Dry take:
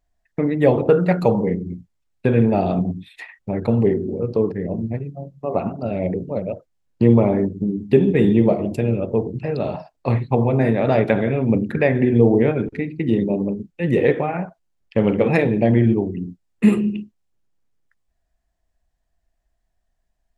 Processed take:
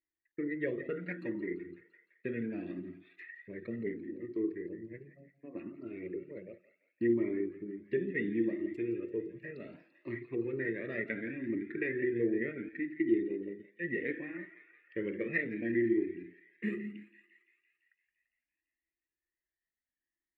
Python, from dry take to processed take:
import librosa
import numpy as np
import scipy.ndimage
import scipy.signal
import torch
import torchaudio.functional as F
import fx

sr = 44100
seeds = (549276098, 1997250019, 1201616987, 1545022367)

y = fx.double_bandpass(x, sr, hz=800.0, octaves=2.5)
y = fx.echo_thinned(y, sr, ms=170, feedback_pct=73, hz=870.0, wet_db=-13.0)
y = fx.comb_cascade(y, sr, direction='rising', hz=0.69)